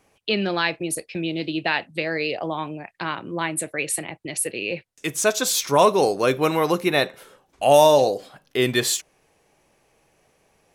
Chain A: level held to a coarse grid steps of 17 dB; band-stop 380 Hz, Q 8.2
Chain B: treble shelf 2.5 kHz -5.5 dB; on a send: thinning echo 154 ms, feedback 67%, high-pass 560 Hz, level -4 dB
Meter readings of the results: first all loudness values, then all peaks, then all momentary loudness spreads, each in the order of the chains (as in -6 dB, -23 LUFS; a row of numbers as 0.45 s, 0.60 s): -28.0 LUFS, -22.0 LUFS; -7.5 dBFS, -3.5 dBFS; 16 LU, 14 LU